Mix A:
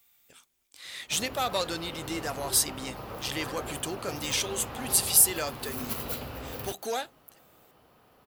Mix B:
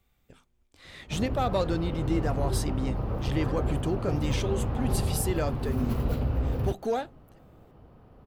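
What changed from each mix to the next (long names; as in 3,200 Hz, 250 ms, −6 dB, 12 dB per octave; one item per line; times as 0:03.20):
master: add spectral tilt −4.5 dB per octave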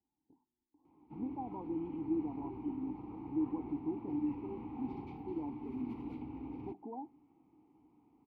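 speech: add linear-phase brick-wall band-stop 1,100–14,000 Hz
master: add formant filter u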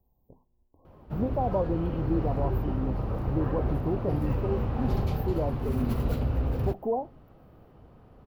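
master: remove formant filter u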